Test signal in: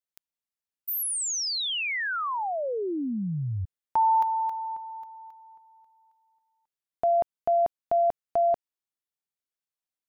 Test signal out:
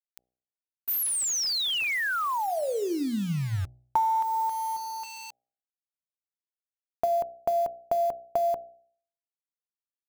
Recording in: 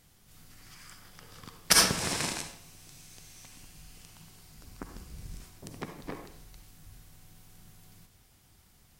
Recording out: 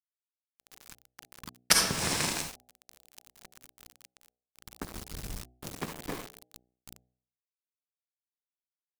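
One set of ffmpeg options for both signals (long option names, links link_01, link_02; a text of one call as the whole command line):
ffmpeg -i in.wav -af "acrusher=bits=6:mix=0:aa=0.000001,acompressor=threshold=-26dB:ratio=10:attack=55:release=426:knee=6:detection=peak,bandreject=frequency=61.73:width_type=h:width=4,bandreject=frequency=123.46:width_type=h:width=4,bandreject=frequency=185.19:width_type=h:width=4,bandreject=frequency=246.92:width_type=h:width=4,bandreject=frequency=308.65:width_type=h:width=4,bandreject=frequency=370.38:width_type=h:width=4,bandreject=frequency=432.11:width_type=h:width=4,bandreject=frequency=493.84:width_type=h:width=4,bandreject=frequency=555.57:width_type=h:width=4,bandreject=frequency=617.3:width_type=h:width=4,bandreject=frequency=679.03:width_type=h:width=4,bandreject=frequency=740.76:width_type=h:width=4,bandreject=frequency=802.49:width_type=h:width=4,volume=2.5dB" out.wav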